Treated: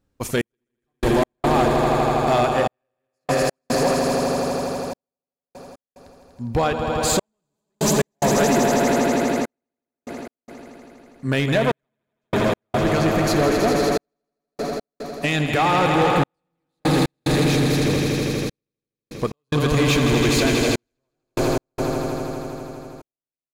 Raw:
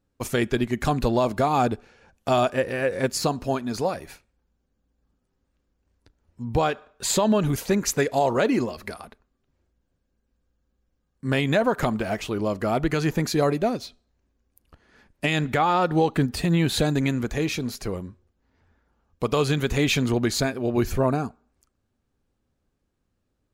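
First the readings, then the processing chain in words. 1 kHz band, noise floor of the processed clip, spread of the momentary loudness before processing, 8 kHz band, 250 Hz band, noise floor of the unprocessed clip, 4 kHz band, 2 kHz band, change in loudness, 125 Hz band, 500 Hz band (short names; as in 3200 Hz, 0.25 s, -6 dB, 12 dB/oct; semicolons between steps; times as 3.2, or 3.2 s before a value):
+4.5 dB, under -85 dBFS, 10 LU, +4.5 dB, +3.5 dB, -75 dBFS, +4.5 dB, +4.5 dB, +3.0 dB, +3.5 dB, +4.0 dB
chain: swelling echo 81 ms, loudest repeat 5, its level -7 dB; in parallel at -4 dB: wavefolder -17 dBFS; on the sum: step gate "xx...x.xxxx" 73 bpm -60 dB; gain -1.5 dB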